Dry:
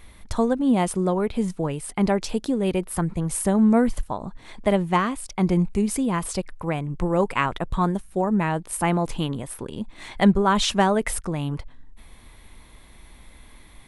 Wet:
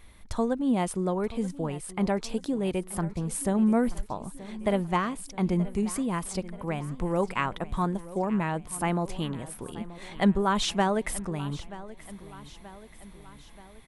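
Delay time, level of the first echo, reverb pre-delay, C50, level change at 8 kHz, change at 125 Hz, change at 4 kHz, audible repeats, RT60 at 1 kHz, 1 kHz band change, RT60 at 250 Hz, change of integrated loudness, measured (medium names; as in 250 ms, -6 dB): 930 ms, -17.0 dB, no reverb, no reverb, -5.5 dB, -5.5 dB, -5.5 dB, 4, no reverb, -5.5 dB, no reverb, -5.5 dB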